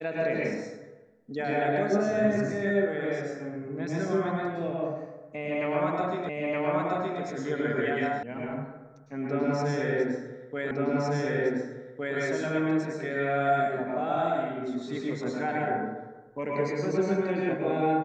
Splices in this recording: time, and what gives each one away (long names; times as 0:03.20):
0:06.29: the same again, the last 0.92 s
0:08.23: cut off before it has died away
0:10.71: the same again, the last 1.46 s